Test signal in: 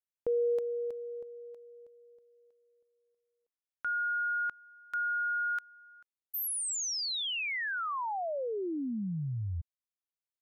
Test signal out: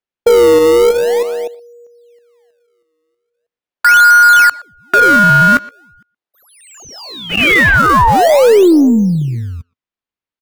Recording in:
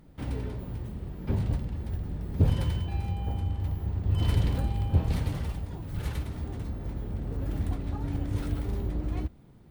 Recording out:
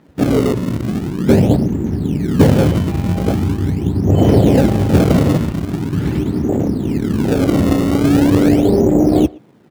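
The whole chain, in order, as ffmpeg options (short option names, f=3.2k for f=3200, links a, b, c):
-filter_complex "[0:a]lowpass=3.3k,afwtdn=0.02,highpass=260,asplit=2[a][b];[b]acrusher=samples=31:mix=1:aa=0.000001:lfo=1:lforange=49.6:lforate=0.42,volume=-6dB[c];[a][c]amix=inputs=2:normalize=0,asoftclip=type=tanh:threshold=-22.5dB,aeval=exprs='0.0708*(cos(1*acos(clip(val(0)/0.0708,-1,1)))-cos(1*PI/2))+0.000501*(cos(8*acos(clip(val(0)/0.0708,-1,1)))-cos(8*PI/2))':c=same,asplit=2[d][e];[e]adelay=120,highpass=300,lowpass=3.4k,asoftclip=type=hard:threshold=-30.5dB,volume=-22dB[f];[d][f]amix=inputs=2:normalize=0,alimiter=level_in=27dB:limit=-1dB:release=50:level=0:latency=1,volume=-1dB"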